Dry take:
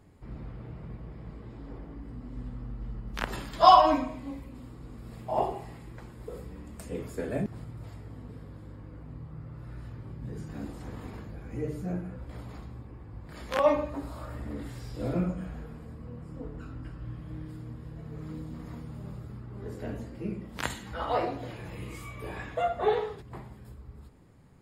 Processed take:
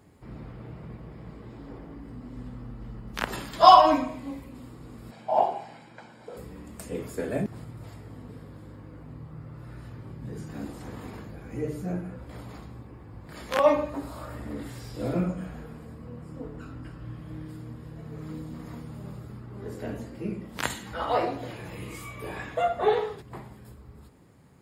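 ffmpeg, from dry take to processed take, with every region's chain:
-filter_complex "[0:a]asettb=1/sr,asplit=3[s0][s1][s2];[s0]atrim=end=5.114[s3];[s1]atrim=start=5.11:end=6.37,asetpts=PTS-STARTPTS,afade=t=in:d=0.004:c=qsin,afade=t=out:st=1.256:d=0.004:c=qsin,highpass=260,lowpass=5600,aecho=1:1:1.3:0.57,atrim=end_sample=55566[s4];[s2]atrim=start=6.366[s5];[s3][s4]acrossfade=d=0.004:c1=hsin:c2=qsin[s6];[s6][s5]acrossfade=d=0.004:c1=qsin:c2=hsin,highpass=f=110:p=1,highshelf=f=7600:g=4,volume=1.41"

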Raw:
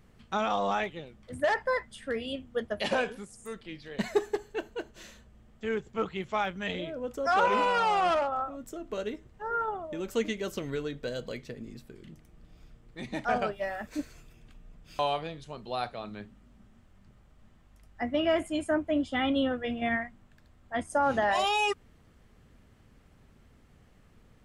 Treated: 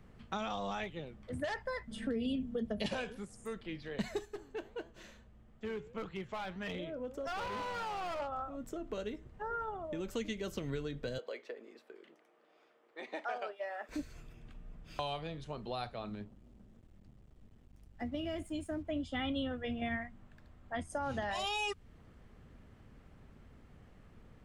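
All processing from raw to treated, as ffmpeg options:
-filter_complex "[0:a]asettb=1/sr,asplit=3[s0][s1][s2];[s0]atrim=end=1.874[s3];[s1]atrim=start=1.87:end=2.86,asetpts=PTS-STARTPTS,afade=t=in:d=0.004:c=qsin,afade=t=out:st=0.986:d=0.004:c=qsin,equalizer=f=270:w=0.46:g=13.5,aecho=1:1:4.5:0.58,atrim=end_sample=43659,acompressor=threshold=0.0708:ratio=2.5:attack=3.2:release=140:knee=1:detection=peak[s4];[s2]atrim=start=2.856[s5];[s3][s4]acrossfade=d=0.004:c1=hsin:c2=qsin[s6];[s6][s5]acrossfade=d=0.004:c1=qsin:c2=hsin,asettb=1/sr,asplit=3[s7][s8][s9];[s7]atrim=end=4.254[s10];[s8]atrim=start=4.25:end=8.2,asetpts=PTS-STARTPTS,afade=t=in:d=0.004:c=qsin,afade=t=out:st=3.946:d=0.004:c=qsin,volume=21.1,asoftclip=hard,volume=0.0473,flanger=delay=5.9:depth=6:regen=87:speed=1.6:shape=sinusoidal[s11];[s9]atrim=start=8.196[s12];[s10][s11]acrossfade=d=0.004:c1=hsin:c2=qsin[s13];[s13][s12]acrossfade=d=0.004:c1=qsin:c2=hsin,asettb=1/sr,asplit=3[s14][s15][s16];[s14]atrim=end=11.184[s17];[s15]atrim=start=11.18:end=13.89,asetpts=PTS-STARTPTS,afade=t=in:d=0.004:c=qsin,afade=t=out:st=2.706:d=0.004:c=qsin,highpass=f=410:w=0.5412,highpass=f=410:w=1.3066,highshelf=f=5100:g=-11.5[s18];[s16]atrim=start=13.886[s19];[s17][s18]acrossfade=d=0.004:c1=hsin:c2=qsin[s20];[s20][s19]acrossfade=d=0.004:c1=qsin:c2=hsin,asettb=1/sr,asplit=3[s21][s22][s23];[s21]atrim=end=16.154[s24];[s22]atrim=start=16.15:end=18.85,asetpts=PTS-STARTPTS,afade=t=in:d=0.004:c=qsin,afade=t=out:st=2.696:d=0.004:c=qsin,equalizer=f=1200:w=0.51:g=-11.5,acompressor=mode=upward:threshold=0.00355:ratio=2.5:attack=3.2:release=140:knee=2.83:detection=peak,aeval=exprs='sgn(val(0))*max(abs(val(0))-0.001,0)':c=same[s25];[s23]atrim=start=18.846[s26];[s24][s25]acrossfade=d=0.004:c1=hsin:c2=qsin[s27];[s27][s26]acrossfade=d=0.004:c1=qsin:c2=hsin,highshelf=f=3700:g=-9.5,acrossover=split=150|3000[s28][s29][s30];[s29]acompressor=threshold=0.01:ratio=4[s31];[s28][s31][s30]amix=inputs=3:normalize=0,volume=1.19"

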